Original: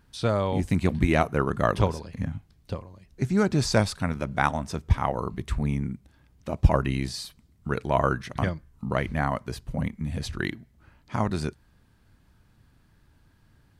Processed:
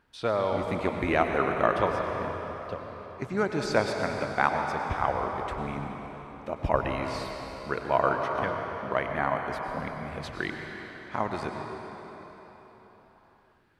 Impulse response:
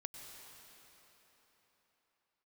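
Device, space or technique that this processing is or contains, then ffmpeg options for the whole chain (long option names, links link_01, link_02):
cathedral: -filter_complex "[0:a]bass=frequency=250:gain=-14,treble=frequency=4000:gain=-12[link_01];[1:a]atrim=start_sample=2205[link_02];[link_01][link_02]afir=irnorm=-1:irlink=0,volume=5dB"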